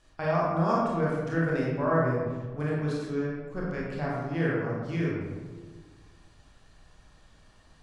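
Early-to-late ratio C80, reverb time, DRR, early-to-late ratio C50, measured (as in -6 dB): 1.5 dB, 1.5 s, -5.5 dB, -1.0 dB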